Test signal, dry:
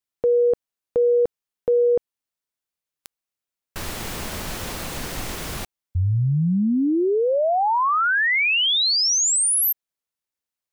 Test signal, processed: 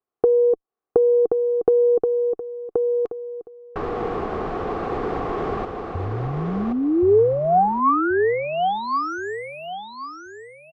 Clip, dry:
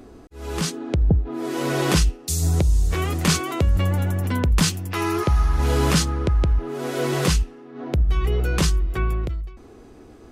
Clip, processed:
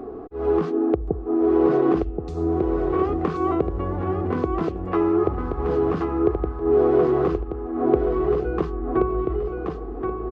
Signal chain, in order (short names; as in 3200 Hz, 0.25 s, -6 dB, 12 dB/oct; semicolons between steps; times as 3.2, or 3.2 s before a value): dynamic EQ 330 Hz, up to +6 dB, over -40 dBFS, Q 3.3; compressor 16:1, threshold -27 dBFS; small resonant body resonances 430/740/1100 Hz, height 17 dB, ringing for 20 ms; added harmonics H 4 -39 dB, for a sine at -2.5 dBFS; tape spacing loss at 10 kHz 39 dB; on a send: feedback echo 1.077 s, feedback 28%, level -4.5 dB